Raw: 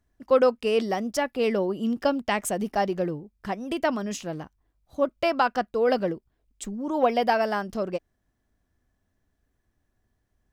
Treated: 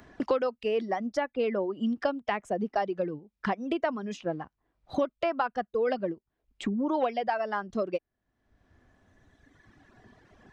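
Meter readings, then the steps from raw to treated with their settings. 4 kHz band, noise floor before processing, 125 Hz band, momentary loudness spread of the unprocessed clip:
-7.5 dB, -75 dBFS, -5.0 dB, 14 LU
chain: tape spacing loss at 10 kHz 32 dB; reverb removal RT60 2 s; tilt EQ +2 dB/octave; three bands compressed up and down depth 100%

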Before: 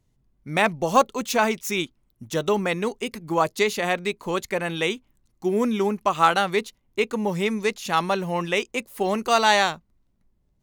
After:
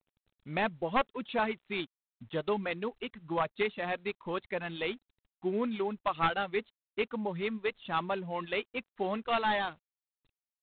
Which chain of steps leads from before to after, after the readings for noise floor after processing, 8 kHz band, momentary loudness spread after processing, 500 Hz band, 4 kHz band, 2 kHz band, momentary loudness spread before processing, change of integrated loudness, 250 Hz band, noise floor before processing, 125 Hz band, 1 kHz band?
under -85 dBFS, under -40 dB, 8 LU, -10.0 dB, -12.0 dB, -10.0 dB, 9 LU, -10.0 dB, -10.0 dB, -68 dBFS, -10.5 dB, -10.5 dB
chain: one-sided wavefolder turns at -13 dBFS; reverb removal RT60 1.1 s; trim -8.5 dB; G.726 24 kbps 8 kHz

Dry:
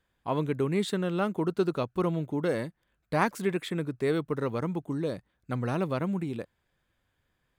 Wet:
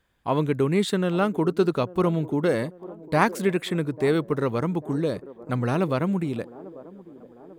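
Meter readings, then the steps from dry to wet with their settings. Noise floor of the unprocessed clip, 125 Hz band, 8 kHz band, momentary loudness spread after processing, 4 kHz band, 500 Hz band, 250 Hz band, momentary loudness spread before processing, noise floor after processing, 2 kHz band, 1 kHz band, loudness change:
-77 dBFS, +5.5 dB, +5.5 dB, 12 LU, +5.5 dB, +5.5 dB, +5.5 dB, 6 LU, -50 dBFS, +5.5 dB, +5.5 dB, +5.5 dB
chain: feedback echo behind a band-pass 844 ms, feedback 55%, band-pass 450 Hz, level -16.5 dB; trim +5.5 dB

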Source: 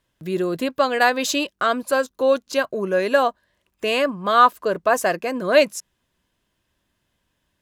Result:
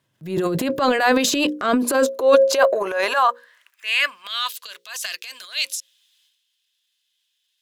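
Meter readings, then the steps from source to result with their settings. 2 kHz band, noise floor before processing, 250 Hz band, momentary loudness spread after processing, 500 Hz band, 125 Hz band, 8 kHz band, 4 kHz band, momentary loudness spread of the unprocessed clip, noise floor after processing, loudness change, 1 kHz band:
0.0 dB, -74 dBFS, +2.5 dB, 14 LU, 0.0 dB, no reading, +4.5 dB, +3.5 dB, 8 LU, -73 dBFS, +0.5 dB, -2.5 dB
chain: hum notches 60/120/180/240/300/360/420/480/540 Hz; high-pass sweep 120 Hz -> 3.5 kHz, 1.01–4.49 s; transient shaper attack -8 dB, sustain +10 dB; trim +1 dB

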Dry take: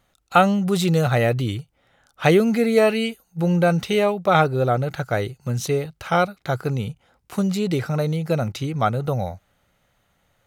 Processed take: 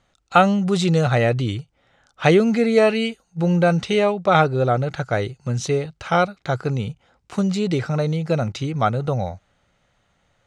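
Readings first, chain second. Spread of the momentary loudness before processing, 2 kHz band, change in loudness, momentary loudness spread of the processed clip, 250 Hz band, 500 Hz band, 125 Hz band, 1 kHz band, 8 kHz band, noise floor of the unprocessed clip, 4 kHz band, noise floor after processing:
10 LU, +1.0 dB, +1.0 dB, 10 LU, +1.0 dB, +1.0 dB, +1.0 dB, +1.0 dB, -0.5 dB, -67 dBFS, +1.0 dB, -66 dBFS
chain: low-pass 8 kHz 24 dB/octave; trim +1 dB

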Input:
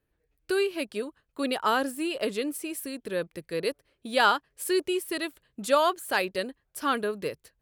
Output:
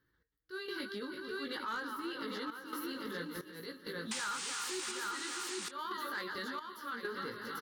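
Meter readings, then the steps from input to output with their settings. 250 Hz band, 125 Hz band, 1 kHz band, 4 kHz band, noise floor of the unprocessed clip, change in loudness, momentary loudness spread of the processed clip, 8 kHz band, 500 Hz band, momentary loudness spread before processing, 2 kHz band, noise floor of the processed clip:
-11.0 dB, -7.5 dB, -12.5 dB, -8.0 dB, -77 dBFS, -11.0 dB, 6 LU, -3.0 dB, -16.0 dB, 12 LU, -8.5 dB, -78 dBFS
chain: backward echo that repeats 164 ms, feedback 72%, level -13 dB; peaking EQ 1.7 kHz +5.5 dB 2.3 oct; static phaser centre 2.5 kHz, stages 6; in parallel at -10 dB: one-sided clip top -23 dBFS; on the sum: transient shaper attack -12 dB, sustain 0 dB; chorus 0.56 Hz, delay 17 ms, depth 2.6 ms; painted sound noise, 4.11–4.92 s, 750–9600 Hz -30 dBFS; bass shelf 64 Hz -9.5 dB; delay 795 ms -6 dB; trance gate "x..xxxxxxxx.xx" 66 bpm -12 dB; saturation -20 dBFS, distortion -14 dB; compression 6:1, threshold -42 dBFS, peak gain reduction 17.5 dB; trim +4 dB

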